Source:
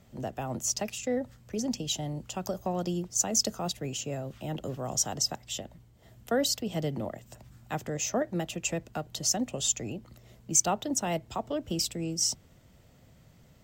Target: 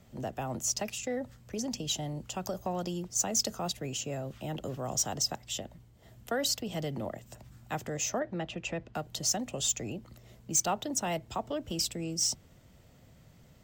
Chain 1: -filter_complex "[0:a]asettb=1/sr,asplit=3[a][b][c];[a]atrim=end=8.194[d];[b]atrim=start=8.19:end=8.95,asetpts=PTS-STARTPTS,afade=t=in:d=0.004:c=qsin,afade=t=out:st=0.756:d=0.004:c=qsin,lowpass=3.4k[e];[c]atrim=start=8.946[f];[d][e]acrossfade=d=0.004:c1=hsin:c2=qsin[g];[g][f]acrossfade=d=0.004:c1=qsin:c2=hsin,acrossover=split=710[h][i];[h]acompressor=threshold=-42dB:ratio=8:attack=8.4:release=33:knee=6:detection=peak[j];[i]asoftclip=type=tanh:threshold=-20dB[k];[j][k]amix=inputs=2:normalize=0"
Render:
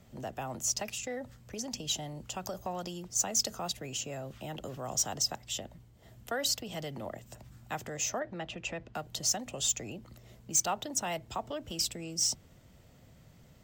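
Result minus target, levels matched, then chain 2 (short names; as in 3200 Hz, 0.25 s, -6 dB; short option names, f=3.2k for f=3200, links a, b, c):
compressor: peak gain reduction +7 dB
-filter_complex "[0:a]asettb=1/sr,asplit=3[a][b][c];[a]atrim=end=8.194[d];[b]atrim=start=8.19:end=8.95,asetpts=PTS-STARTPTS,afade=t=in:d=0.004:c=qsin,afade=t=out:st=0.756:d=0.004:c=qsin,lowpass=3.4k[e];[c]atrim=start=8.946[f];[d][e]acrossfade=d=0.004:c1=hsin:c2=qsin[g];[g][f]acrossfade=d=0.004:c1=qsin:c2=hsin,acrossover=split=710[h][i];[h]acompressor=threshold=-34dB:ratio=8:attack=8.4:release=33:knee=6:detection=peak[j];[i]asoftclip=type=tanh:threshold=-20dB[k];[j][k]amix=inputs=2:normalize=0"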